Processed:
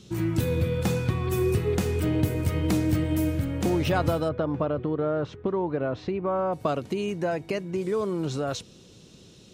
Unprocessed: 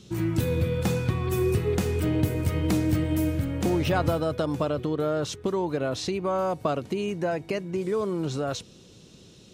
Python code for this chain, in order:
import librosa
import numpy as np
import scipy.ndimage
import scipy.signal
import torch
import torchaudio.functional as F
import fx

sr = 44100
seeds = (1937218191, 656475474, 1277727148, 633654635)

y = fx.lowpass(x, sr, hz=1900.0, slope=12, at=(4.28, 6.52), fade=0.02)